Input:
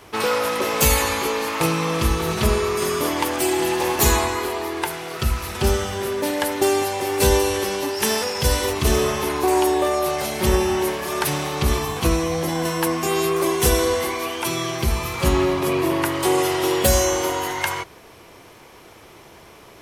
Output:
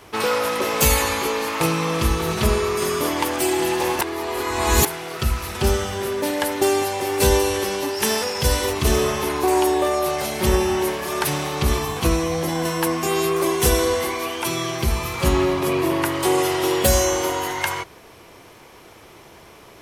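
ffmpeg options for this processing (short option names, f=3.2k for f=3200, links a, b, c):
-filter_complex "[0:a]asplit=3[a][b][c];[a]atrim=end=4.012[d];[b]atrim=start=4.008:end=4.852,asetpts=PTS-STARTPTS,areverse[e];[c]atrim=start=4.848[f];[d][e]acrossfade=d=0.004:c1=hsin:c2=hsin[g];[g][f]acrossfade=d=0.004:c1=hsin:c2=hsin"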